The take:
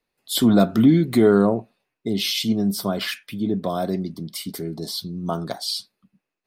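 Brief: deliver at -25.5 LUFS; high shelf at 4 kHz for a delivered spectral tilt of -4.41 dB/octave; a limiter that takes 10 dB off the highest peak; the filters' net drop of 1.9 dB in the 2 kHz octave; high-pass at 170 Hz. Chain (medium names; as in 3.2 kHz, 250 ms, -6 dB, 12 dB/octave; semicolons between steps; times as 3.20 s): high-pass 170 Hz; peaking EQ 2 kHz -3.5 dB; treble shelf 4 kHz +3.5 dB; trim +0.5 dB; peak limiter -14.5 dBFS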